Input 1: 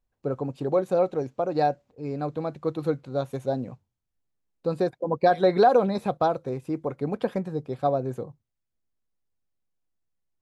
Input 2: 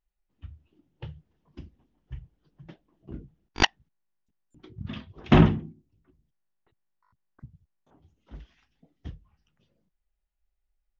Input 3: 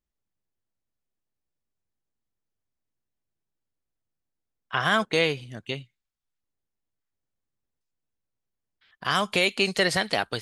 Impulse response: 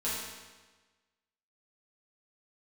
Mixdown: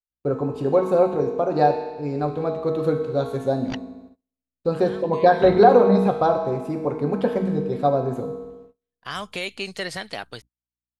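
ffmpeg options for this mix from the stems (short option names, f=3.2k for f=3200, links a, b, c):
-filter_complex "[0:a]adynamicequalizer=threshold=0.00891:dfrequency=2200:dqfactor=0.7:tfrequency=2200:tqfactor=0.7:attack=5:release=100:ratio=0.375:range=3.5:mode=cutabove:tftype=highshelf,volume=1dB,asplit=3[a][b][c];[b]volume=-6dB[d];[1:a]aeval=exprs='val(0)+0.00355*(sin(2*PI*60*n/s)+sin(2*PI*2*60*n/s)/2+sin(2*PI*3*60*n/s)/3+sin(2*PI*4*60*n/s)/4+sin(2*PI*5*60*n/s)/5)':c=same,adelay=100,volume=-15dB[e];[2:a]volume=-7dB[f];[c]apad=whole_len=459497[g];[f][g]sidechaincompress=threshold=-34dB:ratio=8:attack=9.2:release=713[h];[3:a]atrim=start_sample=2205[i];[d][i]afir=irnorm=-1:irlink=0[j];[a][e][h][j]amix=inputs=4:normalize=0,agate=range=-33dB:threshold=-45dB:ratio=16:detection=peak"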